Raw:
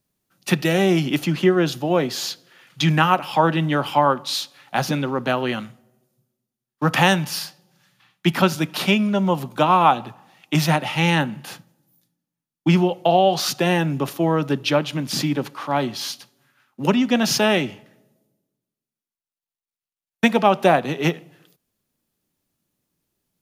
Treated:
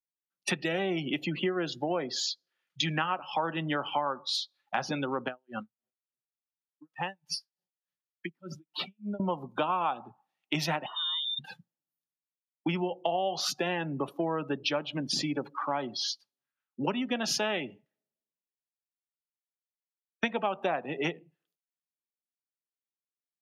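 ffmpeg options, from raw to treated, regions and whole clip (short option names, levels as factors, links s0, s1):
-filter_complex "[0:a]asettb=1/sr,asplit=3[s0][s1][s2];[s0]atrim=end=5.284[s3];[s1]atrim=start=5.28:end=9.2,asetpts=PTS-STARTPTS,afade=t=in:d=0.004:c=qsin,afade=t=out:st=3.916:d=0.004:c=qsin,acompressor=threshold=0.0501:ratio=4:attack=3.2:release=140:knee=1:detection=peak,aeval=exprs='val(0)*pow(10,-28*(0.5-0.5*cos(2*PI*3.4*n/s))/20)':c=same[s4];[s2]atrim=start=9.196[s5];[s3][s4]acrossfade=d=0.004:c1=hsin:c2=qsin[s6];[s6][s5]acrossfade=d=0.004:c1=qsin:c2=hsin,asettb=1/sr,asplit=3[s7][s8][s9];[s7]atrim=end=10.864[s10];[s8]atrim=start=10.86:end=11.39,asetpts=PTS-STARTPTS,afade=t=in:d=0.004:c=qsin,afade=t=out:st=0.526:d=0.004:c=qsin,equalizer=f=1400:w=1.3:g=-13.5,acompressor=threshold=0.0316:ratio=5:attack=3.2:release=140:knee=1:detection=peak,lowpass=f=3200:t=q:w=0.5098,lowpass=f=3200:t=q:w=0.6013,lowpass=f=3200:t=q:w=0.9,lowpass=f=3200:t=q:w=2.563,afreqshift=-3800[s11];[s9]atrim=start=11.386[s12];[s10][s11]acrossfade=d=0.004:c1=hsin:c2=qsin[s13];[s13][s12]acrossfade=d=0.004:c1=qsin:c2=hsin,afftdn=nr=34:nf=-31,highpass=f=410:p=1,acompressor=threshold=0.0224:ratio=4,volume=1.5"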